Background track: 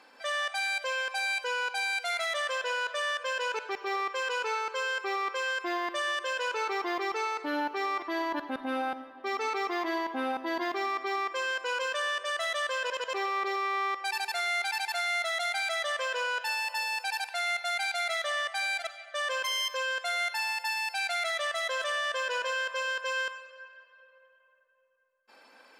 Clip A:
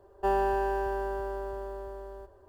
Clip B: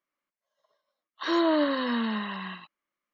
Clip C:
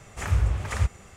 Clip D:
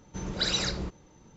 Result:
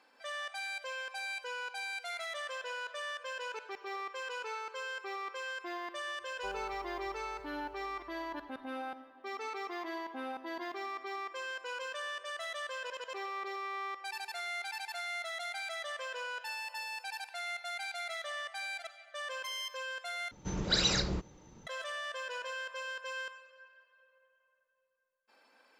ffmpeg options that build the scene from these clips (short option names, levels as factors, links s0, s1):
-filter_complex "[0:a]volume=0.355,asplit=2[s0][s1];[s0]atrim=end=20.314[s2];[4:a]atrim=end=1.36,asetpts=PTS-STARTPTS,volume=0.944[s3];[s1]atrim=start=21.666[s4];[1:a]atrim=end=2.48,asetpts=PTS-STARTPTS,volume=0.15,afade=t=in:d=0.004:c=hsin,afade=t=out:st=2.476:d=0.004:c=hsin,adelay=6200[s5];[s2][s3]acrossfade=d=0.004:c1=hsin:c2=hsin[s6];[s6][s4]acrossfade=d=0.004:c1=hsin:c2=hsin[s7];[s7][s5]amix=inputs=2:normalize=0"